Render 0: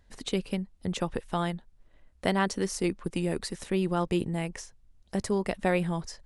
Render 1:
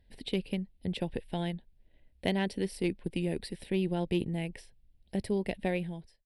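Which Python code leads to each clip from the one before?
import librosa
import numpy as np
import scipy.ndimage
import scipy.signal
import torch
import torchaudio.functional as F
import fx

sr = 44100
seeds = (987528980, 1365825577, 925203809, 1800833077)

y = fx.fade_out_tail(x, sr, length_s=0.68)
y = fx.fixed_phaser(y, sr, hz=2900.0, stages=4)
y = fx.cheby_harmonics(y, sr, harmonics=(3,), levels_db=(-23,), full_scale_db=-13.0)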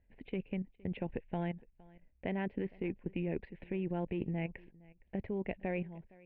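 y = scipy.signal.sosfilt(scipy.signal.ellip(4, 1.0, 80, 2500.0, 'lowpass', fs=sr, output='sos'), x)
y = fx.level_steps(y, sr, step_db=12)
y = y + 10.0 ** (-23.5 / 20.0) * np.pad(y, (int(463 * sr / 1000.0), 0))[:len(y)]
y = y * librosa.db_to_amplitude(1.0)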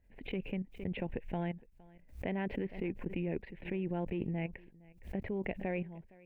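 y = fx.pre_swell(x, sr, db_per_s=130.0)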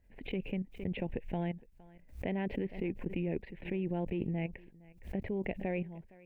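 y = fx.dynamic_eq(x, sr, hz=1300.0, q=1.7, threshold_db=-59.0, ratio=4.0, max_db=-7)
y = y * librosa.db_to_amplitude(1.5)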